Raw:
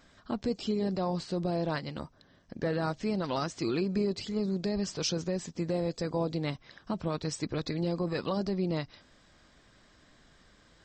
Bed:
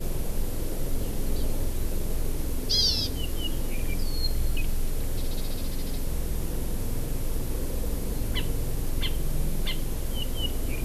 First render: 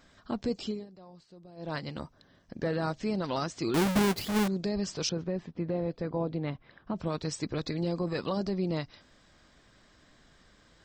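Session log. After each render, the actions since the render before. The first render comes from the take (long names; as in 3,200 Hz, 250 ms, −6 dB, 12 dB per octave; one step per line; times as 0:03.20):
0:00.62–0:01.80: duck −20.5 dB, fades 0.24 s
0:03.74–0:04.48: each half-wave held at its own peak
0:05.09–0:06.96: high-frequency loss of the air 360 metres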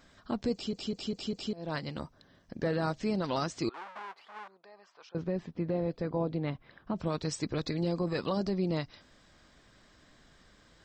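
0:00.53: stutter in place 0.20 s, 5 plays
0:03.69–0:05.15: four-pole ladder band-pass 1,200 Hz, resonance 35%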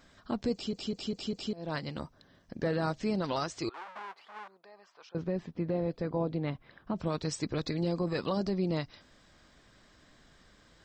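0:03.32–0:03.88: parametric band 210 Hz −9 dB 0.83 octaves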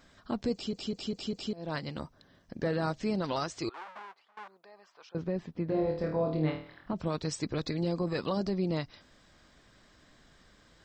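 0:03.87–0:04.37: fade out, to −24 dB
0:05.68–0:06.93: flutter between parallel walls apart 4.4 metres, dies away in 0.47 s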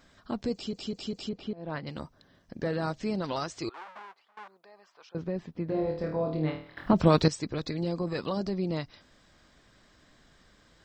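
0:01.29–0:01.87: low-pass filter 2,500 Hz
0:06.77–0:07.28: clip gain +12 dB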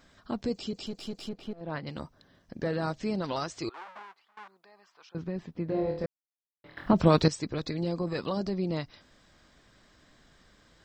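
0:00.86–0:01.61: gain on one half-wave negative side −7 dB
0:04.03–0:05.38: parametric band 540 Hz −6 dB 0.91 octaves
0:06.06–0:06.64: silence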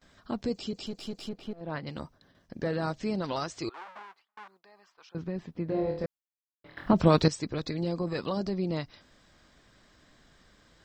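noise gate with hold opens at −52 dBFS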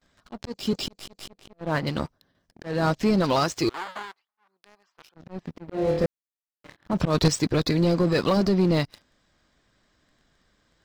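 volume swells 274 ms
leveller curve on the samples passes 3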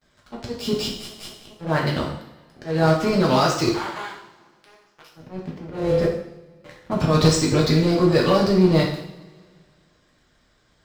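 coupled-rooms reverb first 0.66 s, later 2.1 s, from −20 dB, DRR −3 dB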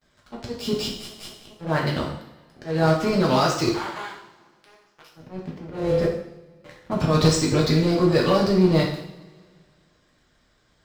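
level −1.5 dB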